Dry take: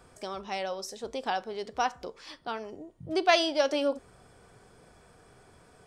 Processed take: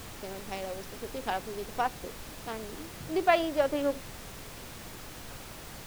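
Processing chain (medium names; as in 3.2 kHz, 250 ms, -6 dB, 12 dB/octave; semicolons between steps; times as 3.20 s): local Wiener filter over 41 samples; low-pass that closes with the level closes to 2.2 kHz, closed at -25 dBFS; added noise pink -44 dBFS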